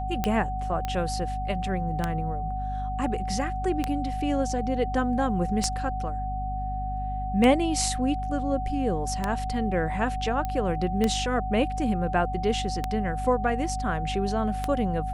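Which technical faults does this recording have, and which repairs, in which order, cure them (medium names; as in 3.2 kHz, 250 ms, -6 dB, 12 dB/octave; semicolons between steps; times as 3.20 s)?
hum 50 Hz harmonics 5 -32 dBFS
tick 33 1/3 rpm -11 dBFS
whine 750 Hz -31 dBFS
0.85 s: pop -16 dBFS
10.45 s: pop -17 dBFS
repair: de-click; de-hum 50 Hz, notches 5; band-stop 750 Hz, Q 30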